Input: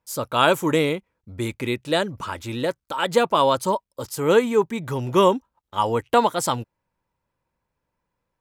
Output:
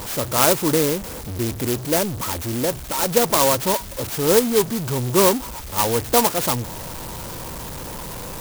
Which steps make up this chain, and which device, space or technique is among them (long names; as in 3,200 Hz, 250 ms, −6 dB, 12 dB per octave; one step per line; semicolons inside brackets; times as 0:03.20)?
early CD player with a faulty converter (converter with a step at zero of −25.5 dBFS; converter with an unsteady clock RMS 0.14 ms)